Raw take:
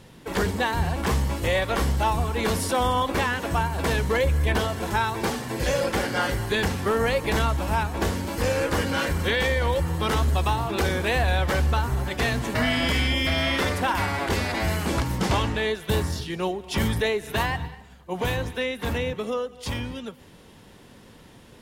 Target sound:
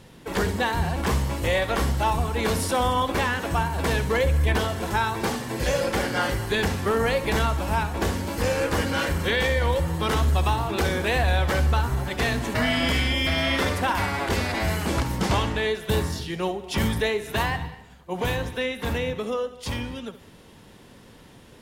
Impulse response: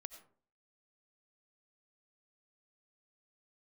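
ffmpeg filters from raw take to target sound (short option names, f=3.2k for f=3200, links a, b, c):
-filter_complex "[0:a]asplit=2[a][b];[1:a]atrim=start_sample=2205,adelay=67[c];[b][c]afir=irnorm=-1:irlink=0,volume=-8dB[d];[a][d]amix=inputs=2:normalize=0"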